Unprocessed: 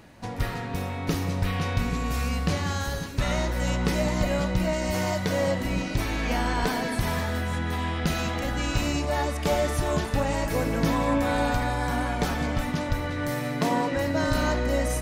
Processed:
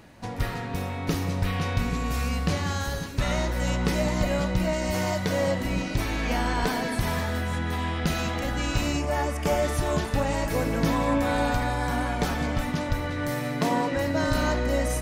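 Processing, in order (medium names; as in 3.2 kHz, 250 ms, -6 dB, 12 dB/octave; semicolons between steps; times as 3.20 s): 8.97–9.63 s: peaking EQ 3.9 kHz -11 dB 0.29 oct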